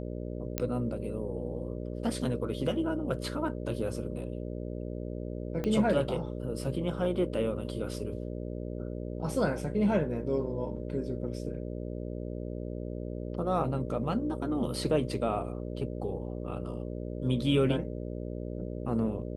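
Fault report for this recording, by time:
buzz 60 Hz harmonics 10 -37 dBFS
0.58 pop -13 dBFS
5.64 pop -20 dBFS

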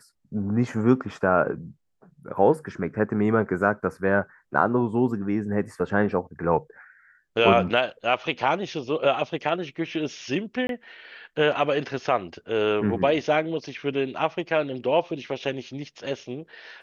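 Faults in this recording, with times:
10.67–10.69 gap 22 ms

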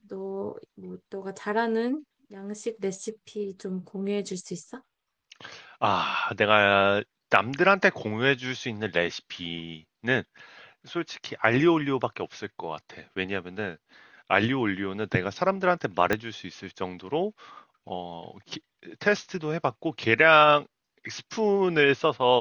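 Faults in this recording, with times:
16.13 pop -10 dBFS

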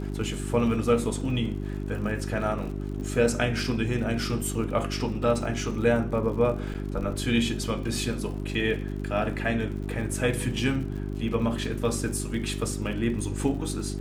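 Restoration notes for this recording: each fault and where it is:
crackle 73/s -37 dBFS
hum 50 Hz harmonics 8 -32 dBFS
6.74–6.75 gap 7.6 ms

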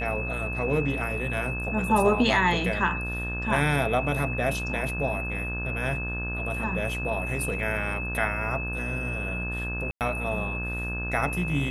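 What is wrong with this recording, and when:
buzz 60 Hz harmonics 29 -33 dBFS
tone 2600 Hz -32 dBFS
9.91–10.01 gap 98 ms

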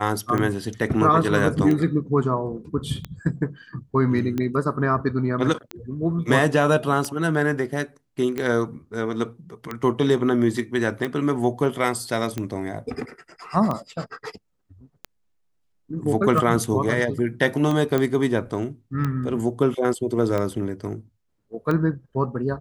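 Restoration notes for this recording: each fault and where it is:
tick 45 rpm -14 dBFS
17.98 pop -10 dBFS

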